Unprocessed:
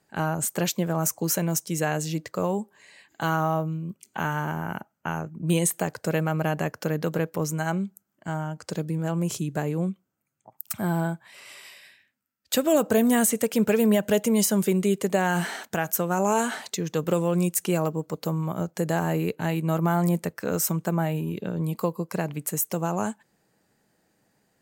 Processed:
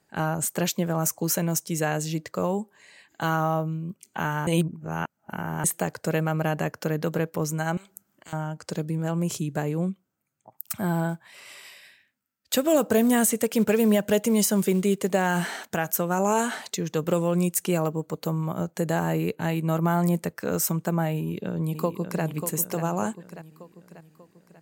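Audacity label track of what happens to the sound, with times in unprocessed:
4.470000	5.640000	reverse
7.770000	8.330000	spectrum-flattening compressor 4:1
11.090000	15.410000	short-mantissa float mantissa of 4-bit
17.750000	19.960000	band-stop 5.2 kHz, Q 8.9
21.150000	22.230000	echo throw 590 ms, feedback 50%, level -8 dB

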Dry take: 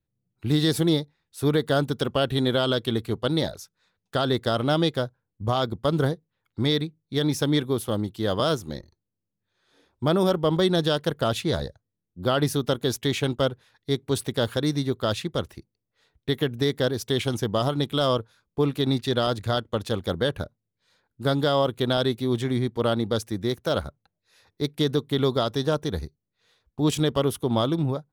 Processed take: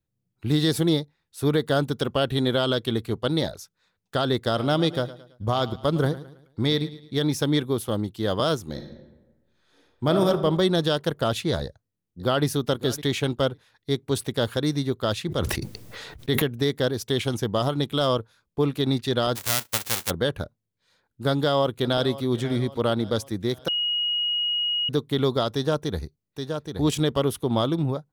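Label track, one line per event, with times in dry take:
4.390000	7.170000	feedback delay 109 ms, feedback 40%, level -16 dB
8.660000	10.270000	reverb throw, RT60 1.2 s, DRR 4.5 dB
11.630000	12.450000	echo throw 560 ms, feedback 10%, level -16.5 dB
15.260000	16.420000	decay stretcher at most 26 dB/s
19.350000	20.090000	formants flattened exponent 0.1
21.300000	22.240000	echo throw 540 ms, feedback 50%, level -16.5 dB
23.680000	24.890000	bleep 2.89 kHz -22 dBFS
25.540000	27.500000	delay 823 ms -6 dB

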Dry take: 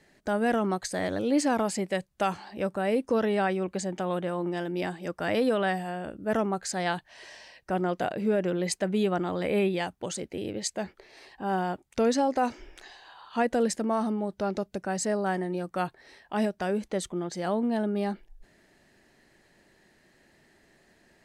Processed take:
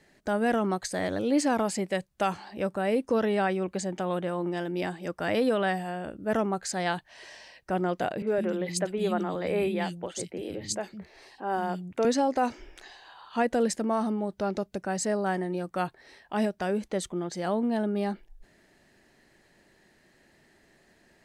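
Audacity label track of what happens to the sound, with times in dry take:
8.220000	12.050000	three bands offset in time mids, highs, lows 50/160 ms, splits 230/2800 Hz

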